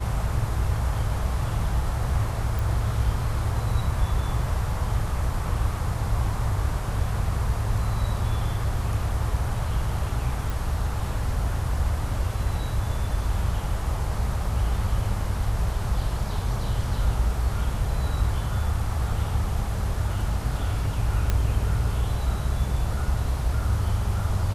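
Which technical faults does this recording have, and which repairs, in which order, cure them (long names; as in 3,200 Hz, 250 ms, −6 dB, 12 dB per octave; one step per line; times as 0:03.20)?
0:02.59: click
0:10.50: click
0:21.30: click −10 dBFS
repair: click removal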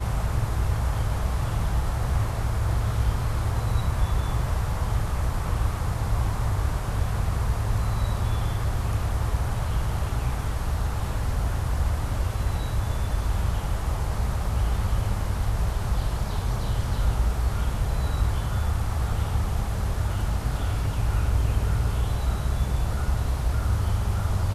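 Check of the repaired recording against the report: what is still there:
none of them is left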